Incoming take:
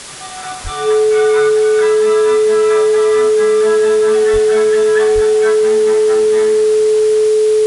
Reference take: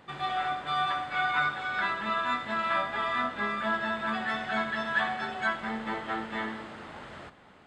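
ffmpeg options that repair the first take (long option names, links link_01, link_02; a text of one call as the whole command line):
ffmpeg -i in.wav -filter_complex "[0:a]bandreject=frequency=430:width=30,asplit=3[link_01][link_02][link_03];[link_01]afade=type=out:start_time=0.63:duration=0.02[link_04];[link_02]highpass=frequency=140:width=0.5412,highpass=frequency=140:width=1.3066,afade=type=in:start_time=0.63:duration=0.02,afade=type=out:start_time=0.75:duration=0.02[link_05];[link_03]afade=type=in:start_time=0.75:duration=0.02[link_06];[link_04][link_05][link_06]amix=inputs=3:normalize=0,asplit=3[link_07][link_08][link_09];[link_07]afade=type=out:start_time=4.32:duration=0.02[link_10];[link_08]highpass=frequency=140:width=0.5412,highpass=frequency=140:width=1.3066,afade=type=in:start_time=4.32:duration=0.02,afade=type=out:start_time=4.44:duration=0.02[link_11];[link_09]afade=type=in:start_time=4.44:duration=0.02[link_12];[link_10][link_11][link_12]amix=inputs=3:normalize=0,asplit=3[link_13][link_14][link_15];[link_13]afade=type=out:start_time=5.14:duration=0.02[link_16];[link_14]highpass=frequency=140:width=0.5412,highpass=frequency=140:width=1.3066,afade=type=in:start_time=5.14:duration=0.02,afade=type=out:start_time=5.26:duration=0.02[link_17];[link_15]afade=type=in:start_time=5.26:duration=0.02[link_18];[link_16][link_17][link_18]amix=inputs=3:normalize=0,afwtdn=0.035,asetnsamples=nb_out_samples=441:pad=0,asendcmd='0.43 volume volume -5dB',volume=0dB" out.wav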